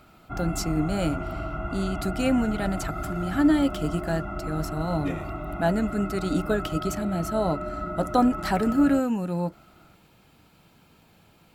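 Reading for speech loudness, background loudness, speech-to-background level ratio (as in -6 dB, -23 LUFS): -27.0 LUFS, -33.5 LUFS, 6.5 dB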